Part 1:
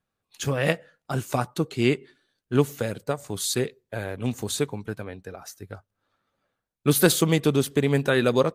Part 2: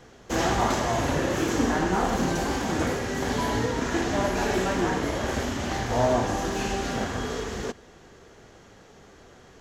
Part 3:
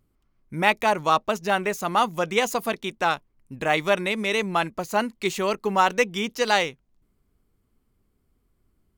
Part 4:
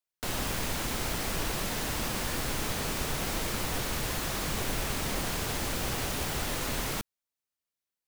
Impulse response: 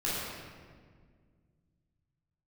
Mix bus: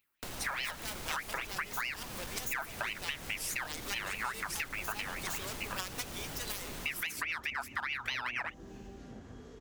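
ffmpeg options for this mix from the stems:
-filter_complex "[0:a]lowpass=frequency=1200:poles=1,aeval=exprs='val(0)*sin(2*PI*1800*n/s+1800*0.4/4.8*sin(2*PI*4.8*n/s))':channel_layout=same,volume=0dB[link_01];[1:a]acrossover=split=400[link_02][link_03];[link_03]acompressor=threshold=-42dB:ratio=4[link_04];[link_02][link_04]amix=inputs=2:normalize=0,adelay=2150,volume=-17dB[link_05];[2:a]flanger=delay=0.6:depth=1.8:regen=-65:speed=0.91:shape=sinusoidal,aeval=exprs='0.422*(cos(1*acos(clip(val(0)/0.422,-1,1)))-cos(1*PI/2))+0.133*(cos(7*acos(clip(val(0)/0.422,-1,1)))-cos(7*PI/2))':channel_layout=same,volume=-13dB[link_06];[3:a]volume=-3dB[link_07];[link_05][link_07]amix=inputs=2:normalize=0,asoftclip=type=hard:threshold=-30.5dB,acompressor=threshold=-40dB:ratio=6,volume=0dB[link_08];[link_01][link_06]amix=inputs=2:normalize=0,aemphasis=mode=production:type=riaa,alimiter=limit=-15.5dB:level=0:latency=1:release=286,volume=0dB[link_09];[link_08][link_09]amix=inputs=2:normalize=0,acompressor=threshold=-33dB:ratio=6"

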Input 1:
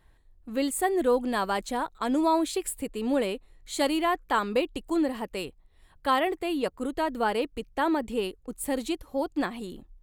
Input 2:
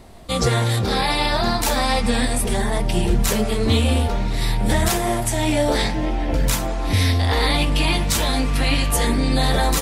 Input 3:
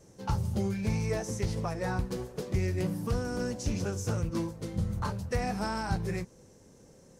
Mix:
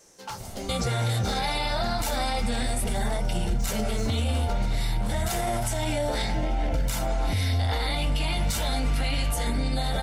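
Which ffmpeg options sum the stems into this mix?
ffmpeg -i stem1.wav -i stem2.wav -i stem3.wav -filter_complex "[0:a]volume=-15.5dB[link_01];[1:a]aecho=1:1:1.4:0.43,adelay=400,volume=1dB[link_02];[2:a]highpass=frequency=1500:poles=1,acontrast=35,aeval=exprs='0.1*sin(PI/2*3.16*val(0)/0.1)':channel_layout=same,volume=-10.5dB[link_03];[link_01][link_02][link_03]amix=inputs=3:normalize=0,alimiter=limit=-18dB:level=0:latency=1:release=129" out.wav

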